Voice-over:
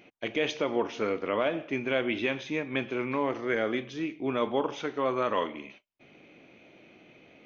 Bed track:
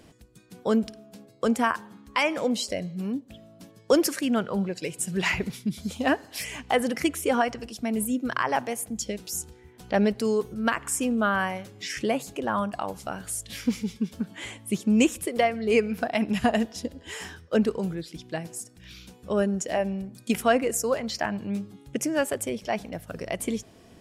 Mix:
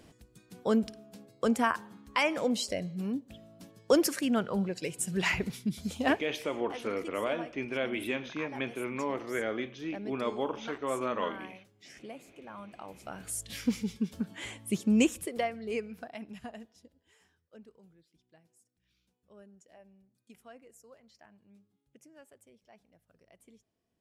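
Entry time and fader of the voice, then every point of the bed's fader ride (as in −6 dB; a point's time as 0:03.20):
5.85 s, −4.5 dB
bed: 0:06.12 −3.5 dB
0:06.47 −19.5 dB
0:12.57 −19.5 dB
0:13.39 −3.5 dB
0:14.97 −3.5 dB
0:17.28 −30.5 dB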